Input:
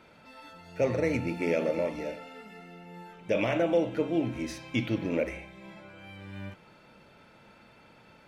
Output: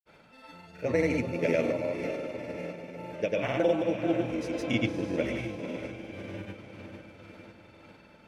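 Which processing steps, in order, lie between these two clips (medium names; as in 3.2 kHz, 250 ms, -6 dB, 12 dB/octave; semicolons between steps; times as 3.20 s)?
echo that smears into a reverb 508 ms, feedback 56%, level -7 dB; tremolo 1.9 Hz, depth 36%; granulator, pitch spread up and down by 0 st; trim +2 dB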